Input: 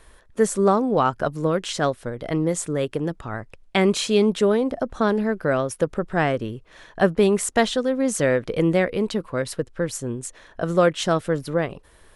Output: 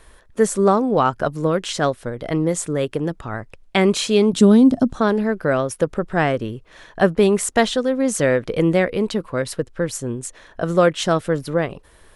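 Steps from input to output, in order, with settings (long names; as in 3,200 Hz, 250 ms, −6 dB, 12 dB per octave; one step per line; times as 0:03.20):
0:04.33–0:04.95: octave-band graphic EQ 125/250/500/2,000/4,000/8,000 Hz +9/+11/−6/−7/+4/+7 dB
level +2.5 dB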